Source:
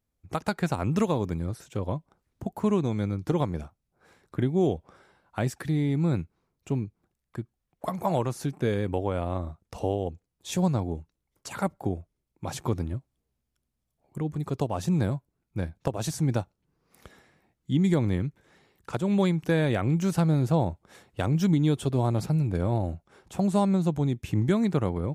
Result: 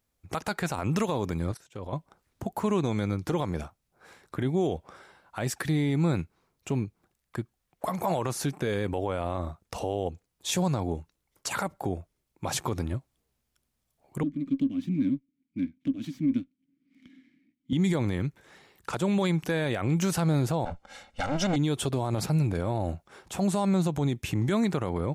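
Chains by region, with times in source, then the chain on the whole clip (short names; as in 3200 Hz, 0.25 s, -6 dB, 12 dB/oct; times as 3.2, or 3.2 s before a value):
1.52–1.93 gate -46 dBFS, range -8 dB + high shelf 7900 Hz -5 dB + level quantiser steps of 13 dB
14.23–17.73 vowel filter i + resonant low shelf 340 Hz +7.5 dB, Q 3 + running maximum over 3 samples
20.65–21.56 minimum comb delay 3.7 ms + LPF 6600 Hz + comb 1.4 ms, depth 56%
whole clip: low shelf 450 Hz -7.5 dB; limiter -25.5 dBFS; gain +7.5 dB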